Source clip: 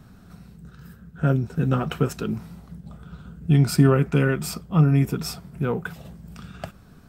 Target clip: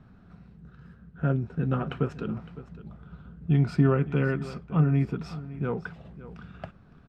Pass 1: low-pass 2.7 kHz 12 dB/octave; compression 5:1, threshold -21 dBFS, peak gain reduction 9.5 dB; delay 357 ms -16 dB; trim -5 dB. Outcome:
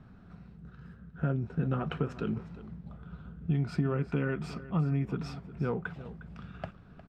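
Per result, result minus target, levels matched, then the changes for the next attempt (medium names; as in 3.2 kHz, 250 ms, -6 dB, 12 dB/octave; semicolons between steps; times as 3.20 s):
compression: peak gain reduction +9.5 dB; echo 203 ms early
remove: compression 5:1, threshold -21 dBFS, peak gain reduction 9.5 dB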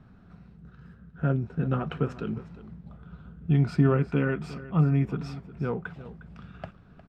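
echo 203 ms early
change: delay 560 ms -16 dB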